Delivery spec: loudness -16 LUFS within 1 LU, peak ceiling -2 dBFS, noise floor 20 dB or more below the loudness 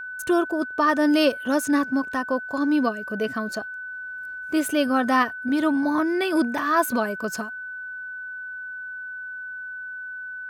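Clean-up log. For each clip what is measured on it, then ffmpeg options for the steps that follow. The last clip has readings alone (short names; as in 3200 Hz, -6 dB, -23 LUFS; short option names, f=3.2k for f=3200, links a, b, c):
steady tone 1500 Hz; tone level -32 dBFS; loudness -24.5 LUFS; peak -7.5 dBFS; loudness target -16.0 LUFS
-> -af "bandreject=f=1.5k:w=30"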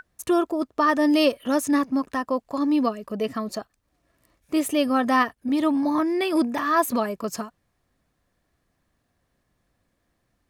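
steady tone none; loudness -23.5 LUFS; peak -8.0 dBFS; loudness target -16.0 LUFS
-> -af "volume=7.5dB,alimiter=limit=-2dB:level=0:latency=1"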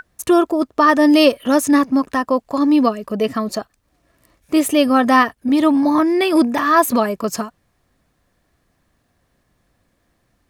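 loudness -16.0 LUFS; peak -2.0 dBFS; noise floor -66 dBFS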